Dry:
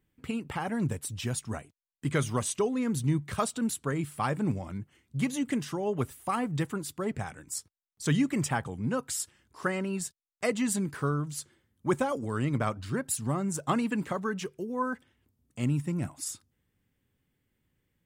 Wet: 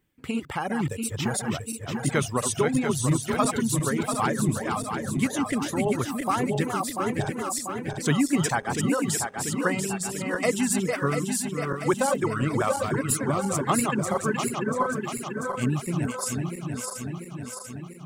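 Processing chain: regenerating reverse delay 0.345 s, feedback 78%, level -4 dB; 14.49–14.92 high shelf 6400 Hz -6 dB; reverb removal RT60 0.69 s; low shelf 160 Hz -5.5 dB; gain +5 dB

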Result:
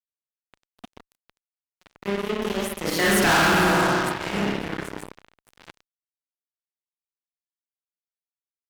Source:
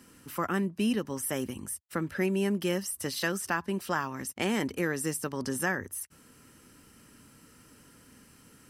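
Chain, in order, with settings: Doppler pass-by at 3.23, 26 m/s, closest 1.5 m; spring tank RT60 1.8 s, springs 30/50 ms, chirp 20 ms, DRR -10 dB; fuzz box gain 40 dB, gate -45 dBFS; gain -3.5 dB

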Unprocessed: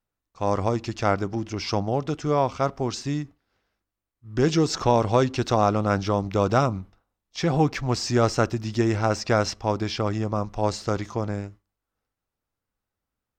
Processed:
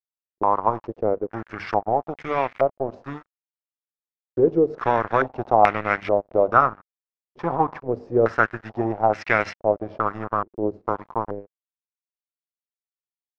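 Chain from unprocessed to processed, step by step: HPF 71 Hz 12 dB/oct; tilt +2 dB/oct; two-slope reverb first 0.48 s, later 3.3 s, from -18 dB, DRR 14.5 dB; in parallel at -1.5 dB: compressor 20:1, threshold -29 dBFS, peak gain reduction 15.5 dB; on the sum: notches 50/100/150/200/250 Hz; crossover distortion -30 dBFS; stepped low-pass 2.3 Hz 370–2100 Hz; gain -1 dB

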